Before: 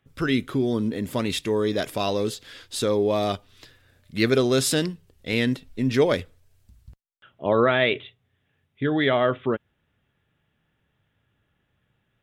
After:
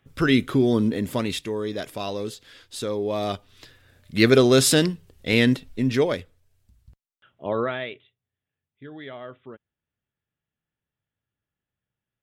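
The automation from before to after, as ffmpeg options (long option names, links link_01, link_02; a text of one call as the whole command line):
ffmpeg -i in.wav -af "volume=13.5dB,afade=type=out:start_time=0.81:duration=0.72:silence=0.354813,afade=type=in:start_time=3.01:duration=1.27:silence=0.334965,afade=type=out:start_time=5.5:duration=0.69:silence=0.334965,afade=type=out:start_time=7.56:duration=0.41:silence=0.237137" out.wav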